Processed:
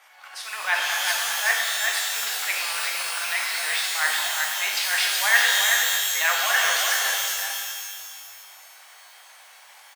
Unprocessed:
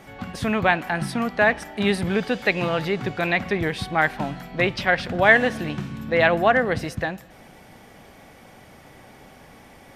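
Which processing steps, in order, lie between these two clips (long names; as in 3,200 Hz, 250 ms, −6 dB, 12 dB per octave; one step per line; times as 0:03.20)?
transient designer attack −11 dB, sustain +7 dB
harmonic and percussive parts rebalanced percussive +9 dB
0:01.54–0:02.12: output level in coarse steps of 20 dB
high-pass filter 870 Hz 24 dB per octave
on a send: single-tap delay 376 ms −4.5 dB
on the sum: reverb with rising layers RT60 1.7 s, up +12 semitones, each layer −2 dB, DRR −0.5 dB
level −8.5 dB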